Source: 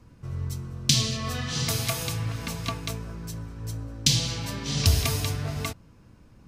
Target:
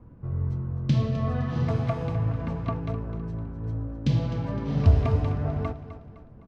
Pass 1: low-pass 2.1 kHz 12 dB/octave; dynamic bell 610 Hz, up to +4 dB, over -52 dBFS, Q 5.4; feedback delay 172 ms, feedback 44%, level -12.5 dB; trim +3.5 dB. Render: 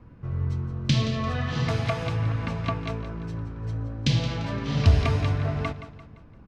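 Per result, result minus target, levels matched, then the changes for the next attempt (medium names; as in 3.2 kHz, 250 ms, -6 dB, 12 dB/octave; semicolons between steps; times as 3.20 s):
2 kHz band +9.0 dB; echo 84 ms early
change: low-pass 990 Hz 12 dB/octave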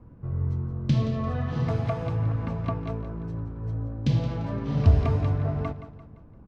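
echo 84 ms early
change: feedback delay 256 ms, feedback 44%, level -12.5 dB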